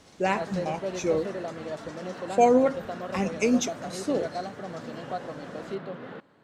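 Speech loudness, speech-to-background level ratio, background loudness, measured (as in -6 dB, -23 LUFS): -26.5 LUFS, 9.5 dB, -36.0 LUFS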